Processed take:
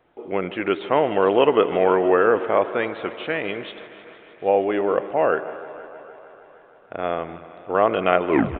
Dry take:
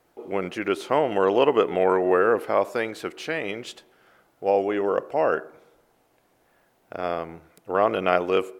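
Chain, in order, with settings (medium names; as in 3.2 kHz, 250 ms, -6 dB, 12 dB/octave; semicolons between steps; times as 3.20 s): tape stop on the ending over 0.31 s; on a send: thinning echo 155 ms, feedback 80%, high-pass 150 Hz, level -17.5 dB; on the sum: resampled via 8 kHz; modulated delay 253 ms, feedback 60%, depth 62 cents, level -19 dB; trim +2.5 dB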